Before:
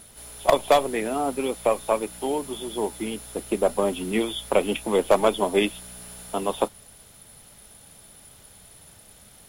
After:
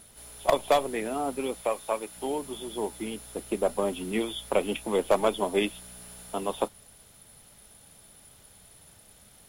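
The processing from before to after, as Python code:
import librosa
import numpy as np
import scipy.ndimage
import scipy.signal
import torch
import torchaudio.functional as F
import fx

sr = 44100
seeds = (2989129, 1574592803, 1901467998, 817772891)

y = fx.low_shelf(x, sr, hz=340.0, db=-8.5, at=(1.61, 2.17))
y = y * 10.0 ** (-4.5 / 20.0)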